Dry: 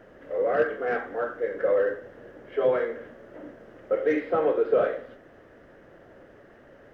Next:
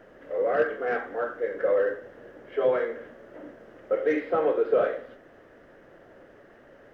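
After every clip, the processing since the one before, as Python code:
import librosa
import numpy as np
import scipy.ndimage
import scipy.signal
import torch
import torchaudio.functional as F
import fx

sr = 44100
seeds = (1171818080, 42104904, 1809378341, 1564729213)

y = fx.peak_eq(x, sr, hz=72.0, db=-4.5, octaves=2.9)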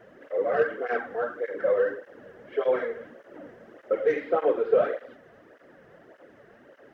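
y = fx.flanger_cancel(x, sr, hz=1.7, depth_ms=3.8)
y = y * 10.0 ** (2.5 / 20.0)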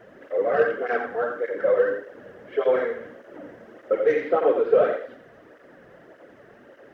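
y = x + 10.0 ** (-8.5 / 20.0) * np.pad(x, (int(86 * sr / 1000.0), 0))[:len(x)]
y = y * 10.0 ** (3.0 / 20.0)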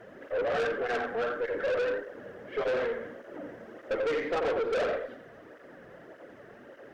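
y = fx.tube_stage(x, sr, drive_db=26.0, bias=0.2)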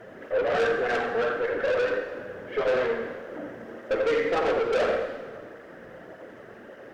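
y = fx.rev_plate(x, sr, seeds[0], rt60_s=1.7, hf_ratio=0.8, predelay_ms=0, drr_db=5.5)
y = y * 10.0 ** (4.0 / 20.0)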